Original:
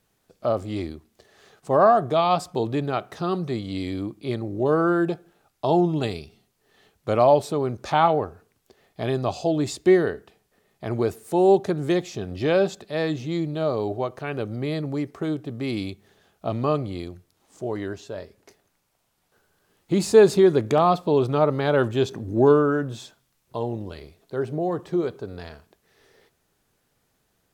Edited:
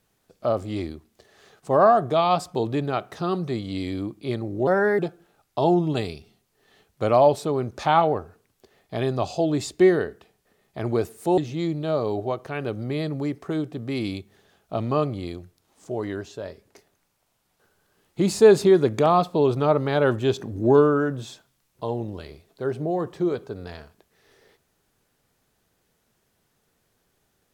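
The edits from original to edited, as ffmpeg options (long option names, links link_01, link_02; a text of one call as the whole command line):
ffmpeg -i in.wav -filter_complex "[0:a]asplit=4[link_01][link_02][link_03][link_04];[link_01]atrim=end=4.674[link_05];[link_02]atrim=start=4.67:end=5.05,asetpts=PTS-STARTPTS,asetrate=52920,aresample=44100[link_06];[link_03]atrim=start=5.046:end=11.442[link_07];[link_04]atrim=start=13.098[link_08];[link_05][link_06]acrossfade=duration=0.004:curve1=hsin:curve2=hsin[link_09];[link_09][link_07]acrossfade=duration=0.004:curve1=hsin:curve2=hsin[link_10];[link_10][link_08]acrossfade=duration=0.004:curve1=hsin:curve2=hsin" out.wav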